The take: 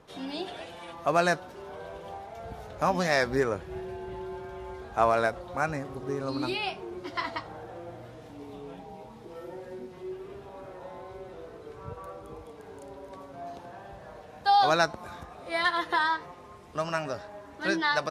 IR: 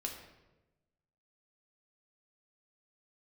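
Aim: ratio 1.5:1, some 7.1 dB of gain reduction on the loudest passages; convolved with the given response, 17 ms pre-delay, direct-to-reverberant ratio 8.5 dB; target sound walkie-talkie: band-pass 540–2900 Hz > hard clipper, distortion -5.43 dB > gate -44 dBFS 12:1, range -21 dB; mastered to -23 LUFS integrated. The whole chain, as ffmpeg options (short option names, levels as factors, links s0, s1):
-filter_complex "[0:a]acompressor=threshold=0.0126:ratio=1.5,asplit=2[s0][s1];[1:a]atrim=start_sample=2205,adelay=17[s2];[s1][s2]afir=irnorm=-1:irlink=0,volume=0.398[s3];[s0][s3]amix=inputs=2:normalize=0,highpass=540,lowpass=2900,asoftclip=type=hard:threshold=0.0168,agate=range=0.0891:threshold=0.00631:ratio=12,volume=9.44"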